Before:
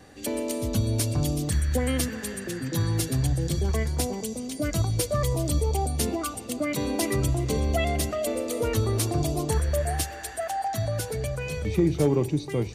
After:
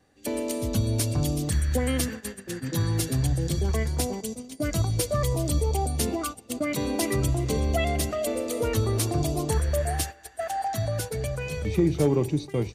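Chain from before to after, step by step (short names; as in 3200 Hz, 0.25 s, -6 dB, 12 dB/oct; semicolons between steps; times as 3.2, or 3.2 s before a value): gate -32 dBFS, range -14 dB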